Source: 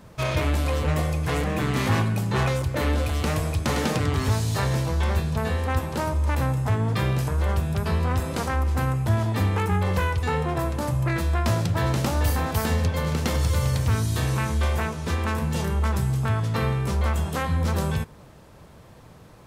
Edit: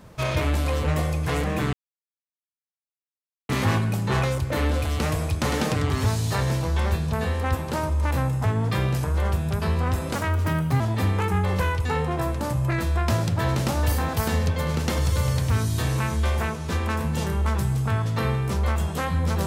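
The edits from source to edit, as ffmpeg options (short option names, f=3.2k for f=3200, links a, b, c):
-filter_complex "[0:a]asplit=4[a][b][c][d];[a]atrim=end=1.73,asetpts=PTS-STARTPTS,afade=t=out:st=1.726:d=0.004:c=hsin,apad=pad_dur=1.76[e];[b]atrim=start=1.73:end=8.394,asetpts=PTS-STARTPTS,afade=t=in:d=0.004:c=hsin[f];[c]atrim=start=8.39:end=9.18,asetpts=PTS-STARTPTS,asetrate=53361,aresample=44100[g];[d]atrim=start=9.176[h];[e][f]concat=n=2:v=0:a=1[i];[i][g]acrossfade=d=0.004:c1=hsin:c2=hsin[j];[j][h]acrossfade=d=0.004:c1=hsin:c2=hsin"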